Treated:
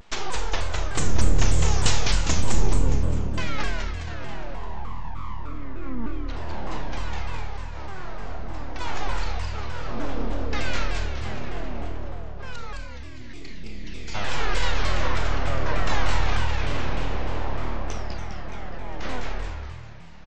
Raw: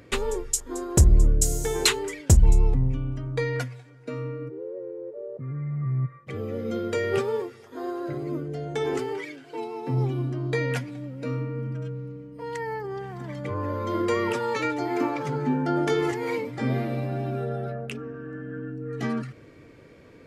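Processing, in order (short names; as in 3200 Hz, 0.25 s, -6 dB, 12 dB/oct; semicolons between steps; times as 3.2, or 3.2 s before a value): low shelf 350 Hz -10.5 dB; 6.77–8.8 compressor 5:1, threshold -36 dBFS, peak gain reduction 11 dB; 12.56–14.15 spectral delete 270–1900 Hz; full-wave rectifier; frequency-shifting echo 0.207 s, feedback 51%, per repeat +38 Hz, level -3 dB; Schroeder reverb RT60 0.68 s, combs from 27 ms, DRR 3 dB; downsampling 16000 Hz; shaped vibrato saw down 3.3 Hz, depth 250 cents; gain +2 dB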